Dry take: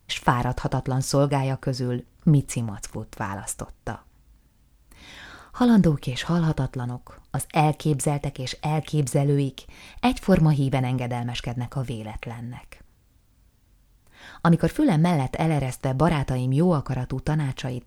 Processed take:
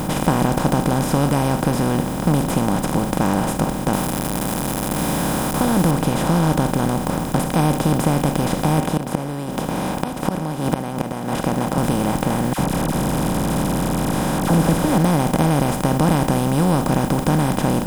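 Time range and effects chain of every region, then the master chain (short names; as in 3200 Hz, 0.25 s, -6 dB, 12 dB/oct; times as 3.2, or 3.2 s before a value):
3.93–5.91 switching spikes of -25 dBFS + bell 11000 Hz +12.5 dB 0.34 oct
8.8–11.78 HPF 660 Hz + tilt -4.5 dB/oct + flipped gate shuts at -22 dBFS, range -34 dB
12.53–14.98 delta modulation 64 kbps, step -36 dBFS + low shelf 130 Hz +11 dB + dispersion lows, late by 59 ms, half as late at 1100 Hz
whole clip: per-bin compression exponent 0.2; bell 3500 Hz -4.5 dB 2.6 oct; gain -5.5 dB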